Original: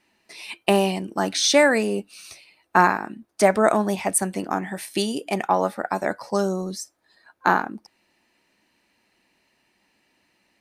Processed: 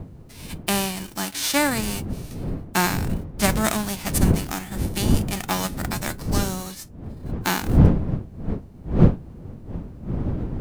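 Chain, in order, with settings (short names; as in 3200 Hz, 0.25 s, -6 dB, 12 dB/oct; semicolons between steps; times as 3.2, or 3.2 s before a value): spectral whitening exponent 0.3; wind noise 180 Hz -20 dBFS; gain -4.5 dB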